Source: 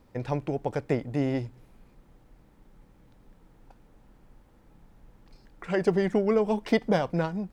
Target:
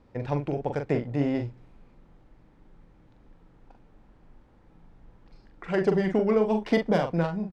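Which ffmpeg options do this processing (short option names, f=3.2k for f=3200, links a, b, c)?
-filter_complex "[0:a]asplit=2[a][b];[b]adelay=42,volume=-6dB[c];[a][c]amix=inputs=2:normalize=0,adynamicsmooth=sensitivity=3.5:basefreq=5.3k"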